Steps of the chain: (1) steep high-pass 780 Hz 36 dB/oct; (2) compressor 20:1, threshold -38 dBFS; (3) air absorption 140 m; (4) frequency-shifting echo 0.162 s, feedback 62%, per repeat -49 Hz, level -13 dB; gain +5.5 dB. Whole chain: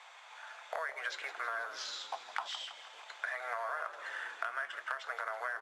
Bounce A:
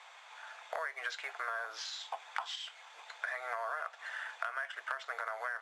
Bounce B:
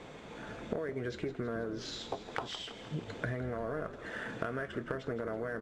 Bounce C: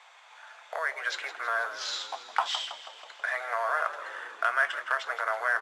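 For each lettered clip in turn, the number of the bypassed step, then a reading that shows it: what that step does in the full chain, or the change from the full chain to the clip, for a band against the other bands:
4, echo-to-direct -11.0 dB to none; 1, 500 Hz band +12.5 dB; 2, mean gain reduction 5.0 dB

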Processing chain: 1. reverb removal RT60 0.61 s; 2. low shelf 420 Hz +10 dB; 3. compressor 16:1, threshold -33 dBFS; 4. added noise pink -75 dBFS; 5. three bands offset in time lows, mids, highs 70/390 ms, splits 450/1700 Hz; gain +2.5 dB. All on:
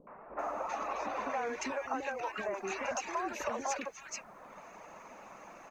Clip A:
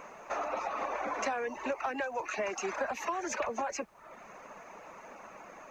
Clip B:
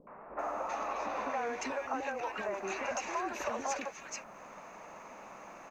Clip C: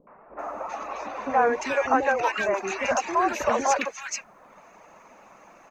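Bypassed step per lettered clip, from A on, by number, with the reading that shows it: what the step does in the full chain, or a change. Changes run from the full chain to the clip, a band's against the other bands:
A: 5, echo-to-direct 13.5 dB to none; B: 1, momentary loudness spread change -2 LU; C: 3, mean gain reduction 5.5 dB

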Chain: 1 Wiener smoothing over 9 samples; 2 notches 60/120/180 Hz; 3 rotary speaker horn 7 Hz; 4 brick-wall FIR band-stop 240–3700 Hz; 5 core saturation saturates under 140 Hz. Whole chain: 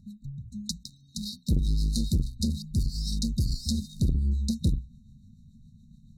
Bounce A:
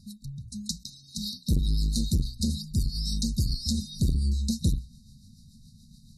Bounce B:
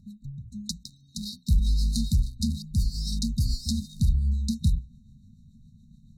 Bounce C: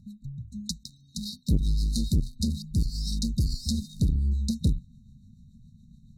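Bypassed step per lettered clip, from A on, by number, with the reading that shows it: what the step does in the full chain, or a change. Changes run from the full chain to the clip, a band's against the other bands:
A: 1, 4 kHz band +3.0 dB; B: 5, crest factor change -2.0 dB; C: 2, momentary loudness spread change -1 LU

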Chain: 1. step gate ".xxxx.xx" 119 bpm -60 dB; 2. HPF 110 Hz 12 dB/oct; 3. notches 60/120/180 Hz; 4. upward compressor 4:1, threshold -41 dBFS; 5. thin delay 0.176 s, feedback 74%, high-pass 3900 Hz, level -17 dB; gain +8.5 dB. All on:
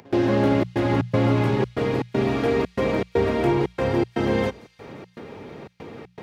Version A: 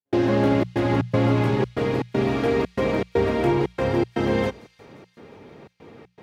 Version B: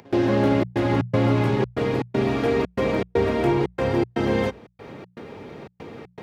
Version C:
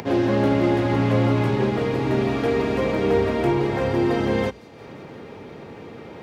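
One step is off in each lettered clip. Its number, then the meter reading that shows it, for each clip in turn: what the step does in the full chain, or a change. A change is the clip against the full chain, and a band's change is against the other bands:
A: 4, momentary loudness spread change -16 LU; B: 5, echo-to-direct -26.5 dB to none; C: 1, loudness change +1.0 LU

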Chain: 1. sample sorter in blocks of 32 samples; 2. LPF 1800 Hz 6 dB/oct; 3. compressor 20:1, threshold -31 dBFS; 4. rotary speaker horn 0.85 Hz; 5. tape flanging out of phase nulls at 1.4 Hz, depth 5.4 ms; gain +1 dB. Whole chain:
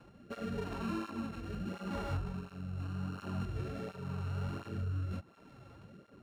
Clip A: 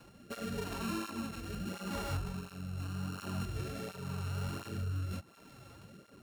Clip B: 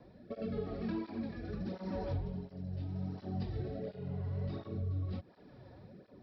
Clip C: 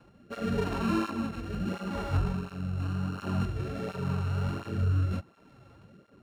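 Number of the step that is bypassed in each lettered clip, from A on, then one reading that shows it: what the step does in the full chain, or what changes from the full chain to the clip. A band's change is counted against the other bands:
2, 4 kHz band +7.0 dB; 1, distortion -6 dB; 3, mean gain reduction 6.0 dB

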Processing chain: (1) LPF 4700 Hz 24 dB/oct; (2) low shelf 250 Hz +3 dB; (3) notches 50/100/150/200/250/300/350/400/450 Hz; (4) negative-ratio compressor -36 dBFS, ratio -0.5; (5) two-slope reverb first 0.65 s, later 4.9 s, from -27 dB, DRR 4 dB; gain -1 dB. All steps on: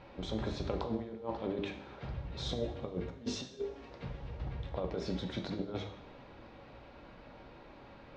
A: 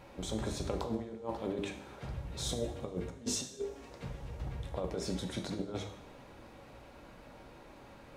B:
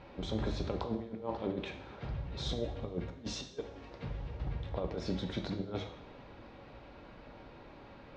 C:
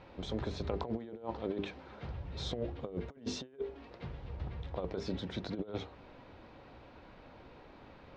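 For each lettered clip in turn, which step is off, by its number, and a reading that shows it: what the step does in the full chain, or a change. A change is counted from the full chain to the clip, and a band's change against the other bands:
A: 1, 8 kHz band +12.5 dB; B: 3, crest factor change -2.0 dB; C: 5, crest factor change +2.0 dB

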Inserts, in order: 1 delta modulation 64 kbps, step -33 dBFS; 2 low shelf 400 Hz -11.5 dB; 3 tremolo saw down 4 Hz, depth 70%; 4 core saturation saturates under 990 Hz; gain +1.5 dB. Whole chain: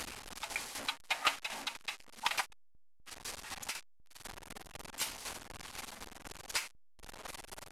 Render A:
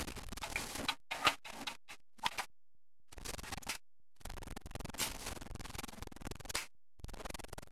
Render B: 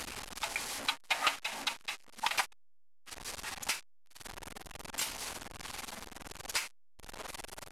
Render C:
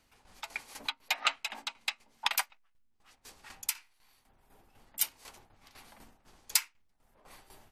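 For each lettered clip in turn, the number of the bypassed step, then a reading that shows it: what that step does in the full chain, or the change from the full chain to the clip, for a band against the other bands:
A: 2, 125 Hz band +10.0 dB; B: 3, crest factor change -2.0 dB; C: 1, 125 Hz band -9.0 dB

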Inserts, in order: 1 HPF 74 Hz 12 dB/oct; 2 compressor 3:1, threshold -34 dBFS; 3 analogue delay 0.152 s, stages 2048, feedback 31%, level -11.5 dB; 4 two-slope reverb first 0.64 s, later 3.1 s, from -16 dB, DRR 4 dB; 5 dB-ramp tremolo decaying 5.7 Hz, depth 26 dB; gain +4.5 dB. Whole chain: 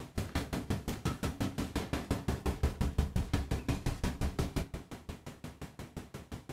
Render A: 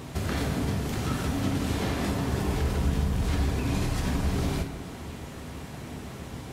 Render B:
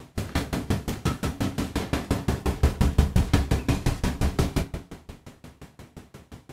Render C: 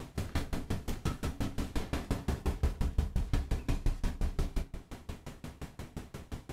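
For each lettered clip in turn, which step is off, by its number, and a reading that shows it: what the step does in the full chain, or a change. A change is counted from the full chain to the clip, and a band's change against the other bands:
5, crest factor change -6.5 dB; 2, mean gain reduction 6.5 dB; 1, 125 Hz band +2.0 dB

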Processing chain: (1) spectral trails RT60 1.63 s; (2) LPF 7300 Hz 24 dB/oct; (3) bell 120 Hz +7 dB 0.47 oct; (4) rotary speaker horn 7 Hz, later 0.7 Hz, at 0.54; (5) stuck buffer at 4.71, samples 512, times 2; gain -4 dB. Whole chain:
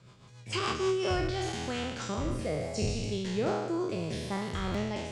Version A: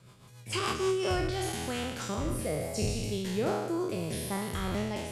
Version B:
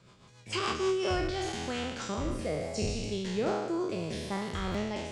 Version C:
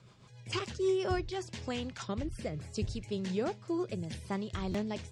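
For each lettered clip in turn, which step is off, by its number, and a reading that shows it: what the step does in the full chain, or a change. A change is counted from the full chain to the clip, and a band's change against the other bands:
2, 8 kHz band +4.0 dB; 3, 125 Hz band -3.0 dB; 1, 250 Hz band +3.5 dB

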